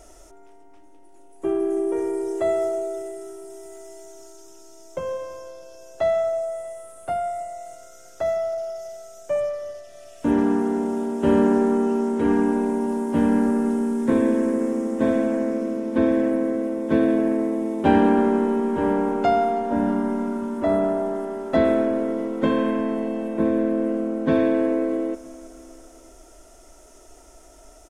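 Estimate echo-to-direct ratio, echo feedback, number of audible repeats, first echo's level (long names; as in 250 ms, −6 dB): −20.5 dB, 60%, 3, −22.5 dB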